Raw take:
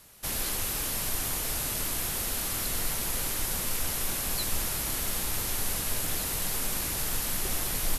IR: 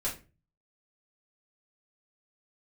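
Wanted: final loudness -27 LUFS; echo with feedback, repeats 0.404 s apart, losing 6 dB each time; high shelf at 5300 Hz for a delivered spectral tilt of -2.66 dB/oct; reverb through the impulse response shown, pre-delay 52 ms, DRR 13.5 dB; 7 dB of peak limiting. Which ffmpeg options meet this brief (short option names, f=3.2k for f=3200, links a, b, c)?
-filter_complex "[0:a]highshelf=f=5.3k:g=-9,alimiter=level_in=0.5dB:limit=-24dB:level=0:latency=1,volume=-0.5dB,aecho=1:1:404|808|1212|1616|2020|2424:0.501|0.251|0.125|0.0626|0.0313|0.0157,asplit=2[a][b];[1:a]atrim=start_sample=2205,adelay=52[c];[b][c]afir=irnorm=-1:irlink=0,volume=-18dB[d];[a][d]amix=inputs=2:normalize=0,volume=7dB"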